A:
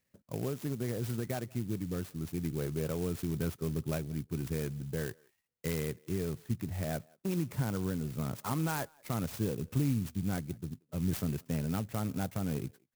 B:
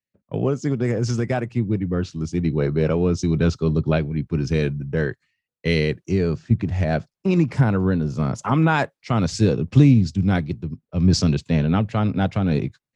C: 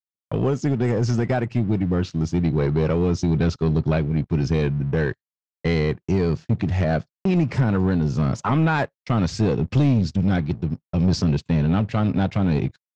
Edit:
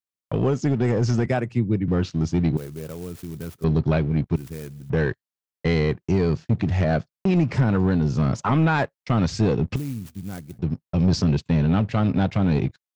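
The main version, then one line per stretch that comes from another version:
C
1.26–1.88 from B
2.57–3.64 from A
4.36–4.9 from A
9.76–10.59 from A

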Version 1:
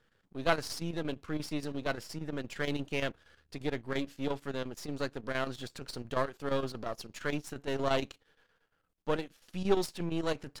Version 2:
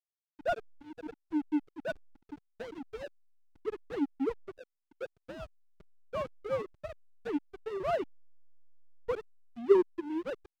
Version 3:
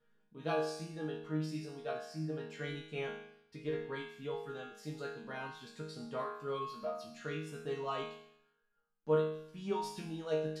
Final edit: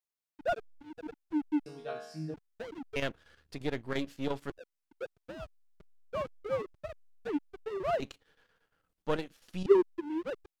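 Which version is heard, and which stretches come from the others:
2
1.66–2.34 from 3
2.96–4.5 from 1
8–9.66 from 1

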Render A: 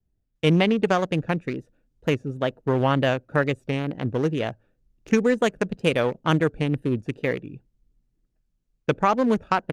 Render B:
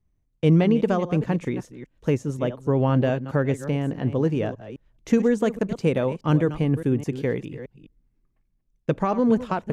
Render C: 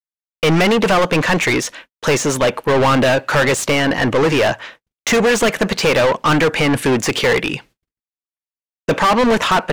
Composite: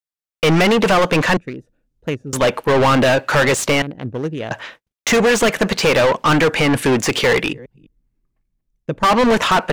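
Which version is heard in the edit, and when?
C
1.37–2.33 from A
3.82–4.51 from A
7.53–9.03 from B

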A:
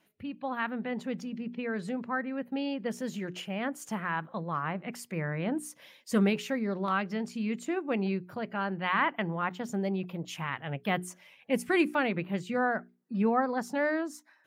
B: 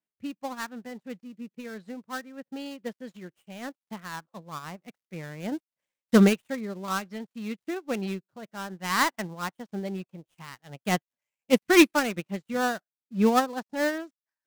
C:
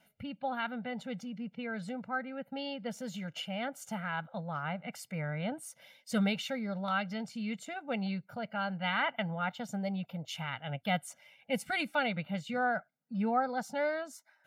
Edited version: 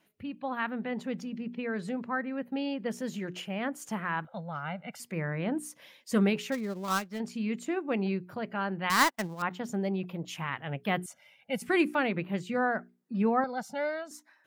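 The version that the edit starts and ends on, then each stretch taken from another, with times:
A
4.25–5 from C
6.52–7.2 from B
8.9–9.42 from B
11.06–11.62 from C
13.44–14.11 from C

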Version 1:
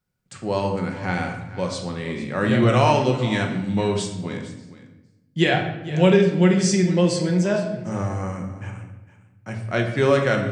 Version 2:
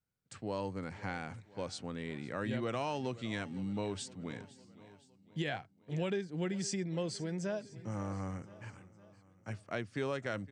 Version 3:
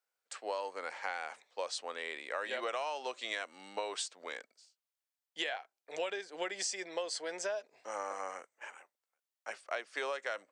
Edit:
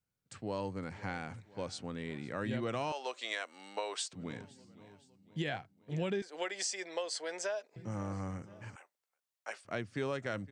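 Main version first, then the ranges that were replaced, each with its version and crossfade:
2
2.92–4.13 from 3
6.22–7.76 from 3
8.76–9.65 from 3
not used: 1

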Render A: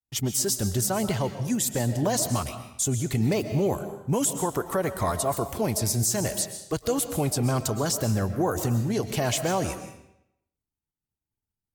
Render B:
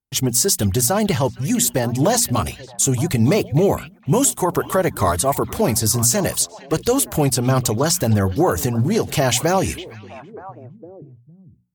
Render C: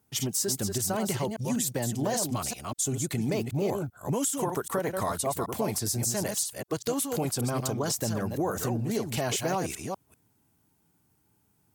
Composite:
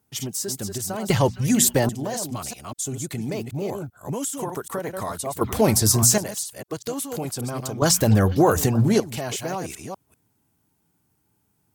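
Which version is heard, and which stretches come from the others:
C
1.1–1.89 from B
5.41–6.18 from B
7.82–9 from B
not used: A

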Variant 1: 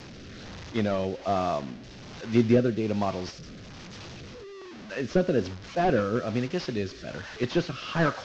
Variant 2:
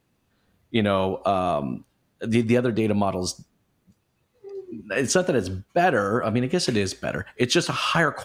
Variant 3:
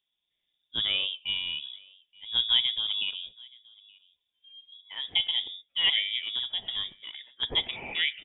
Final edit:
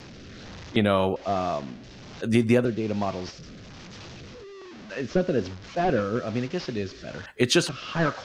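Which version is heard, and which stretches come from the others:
1
0.76–1.16 from 2
2.22–2.65 from 2
7.26–7.69 from 2
not used: 3

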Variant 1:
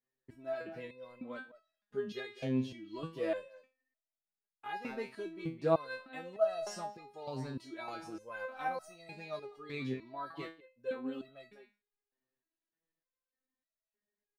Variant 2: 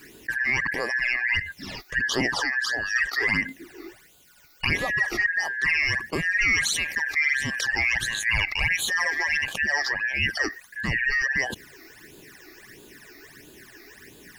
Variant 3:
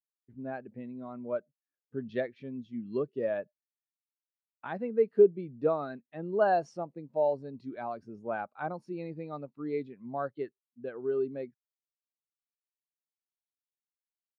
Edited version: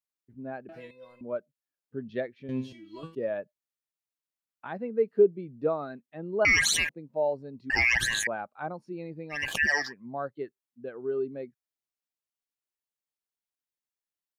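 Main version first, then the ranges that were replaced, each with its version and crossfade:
3
0.69–1.21 from 1
2.49–3.15 from 1
6.45–6.89 from 2
7.7–8.27 from 2
9.41–9.82 from 2, crossfade 0.24 s

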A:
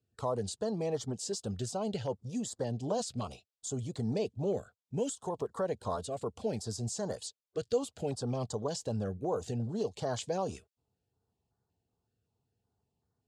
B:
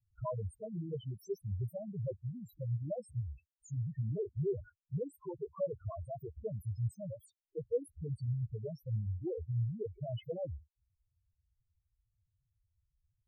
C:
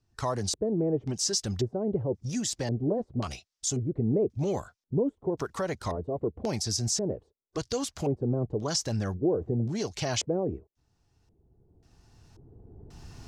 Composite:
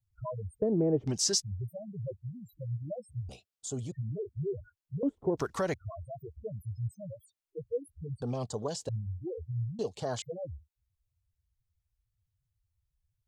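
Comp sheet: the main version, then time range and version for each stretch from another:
B
0.62–1.42 from C
3.29–3.92 from A
5.03–5.74 from C
8.22–8.89 from A
9.79–10.22 from A

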